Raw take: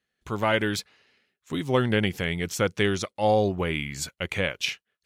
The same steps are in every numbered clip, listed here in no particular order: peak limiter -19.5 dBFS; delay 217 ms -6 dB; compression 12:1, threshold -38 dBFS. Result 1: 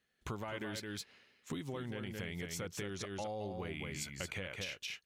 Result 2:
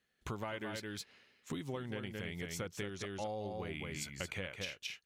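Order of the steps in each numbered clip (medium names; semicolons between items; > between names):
peak limiter > delay > compression; delay > compression > peak limiter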